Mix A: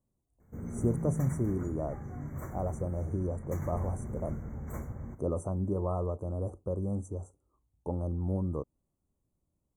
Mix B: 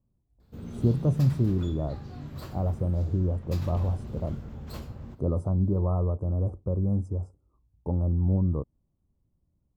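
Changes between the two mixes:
speech: add tone controls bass +9 dB, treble -12 dB; master: remove brick-wall FIR band-stop 2300–5800 Hz

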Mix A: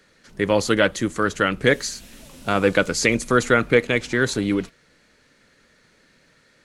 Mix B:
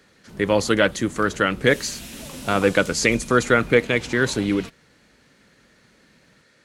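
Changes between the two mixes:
background +8.5 dB; master: add HPF 52 Hz

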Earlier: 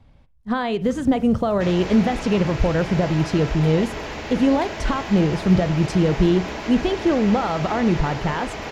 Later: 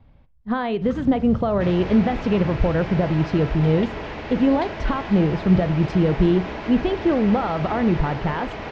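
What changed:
first sound +7.0 dB; master: add air absorption 210 m

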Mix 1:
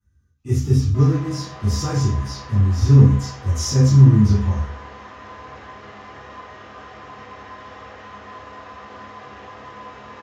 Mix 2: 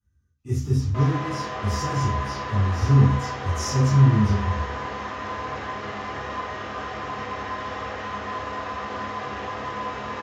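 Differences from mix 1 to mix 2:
speech -5.5 dB; background +7.5 dB

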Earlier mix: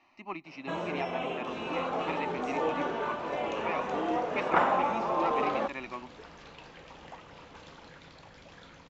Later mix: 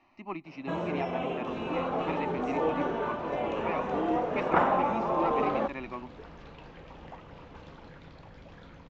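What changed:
second sound: add air absorption 66 m; master: add tilt -2 dB/oct

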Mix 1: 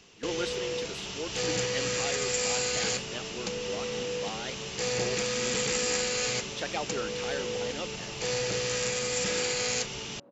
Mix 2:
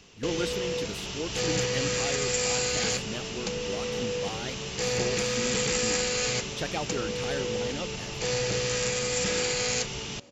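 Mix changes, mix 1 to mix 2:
speech: remove BPF 340–6300 Hz; first sound: send on; master: add low shelf 130 Hz +7 dB

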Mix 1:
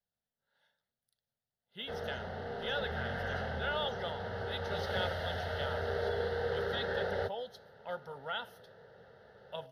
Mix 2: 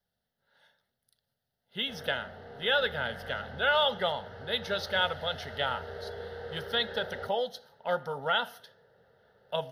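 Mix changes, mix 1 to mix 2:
speech +10.5 dB; background -6.5 dB

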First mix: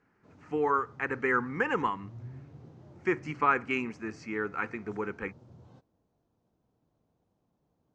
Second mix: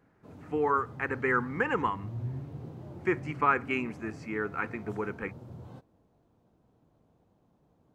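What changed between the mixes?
speech -8.0 dB; master: remove ladder low-pass 7400 Hz, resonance 40%

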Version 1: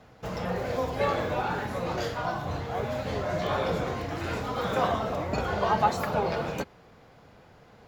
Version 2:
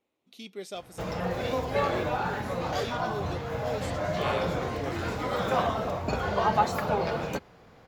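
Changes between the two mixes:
speech: remove air absorption 460 m; background: entry +0.75 s

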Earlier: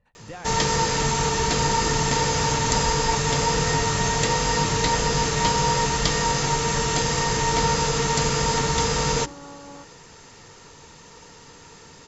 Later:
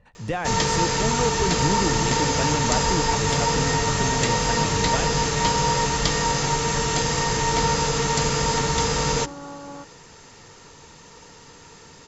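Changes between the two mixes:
speech +11.5 dB; second sound +4.5 dB

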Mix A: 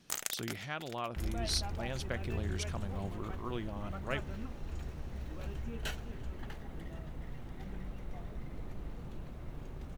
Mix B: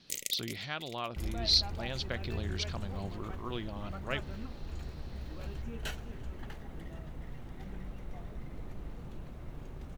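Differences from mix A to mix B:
speech: add synth low-pass 4300 Hz, resonance Q 3.7; first sound: add brick-wall FIR band-stop 590–1900 Hz

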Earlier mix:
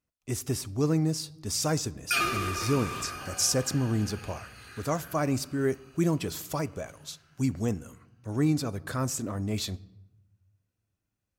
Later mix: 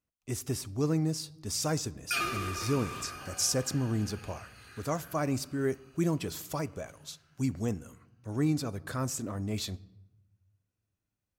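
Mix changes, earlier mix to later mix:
speech -3.0 dB; background -4.5 dB

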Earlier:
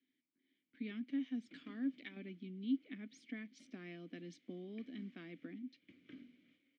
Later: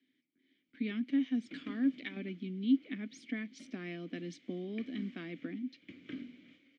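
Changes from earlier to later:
speech +8.0 dB; background +11.5 dB

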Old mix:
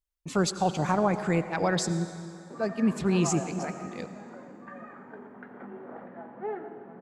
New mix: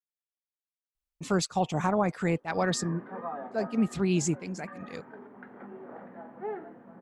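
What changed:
speech: entry +0.95 s; reverb: off

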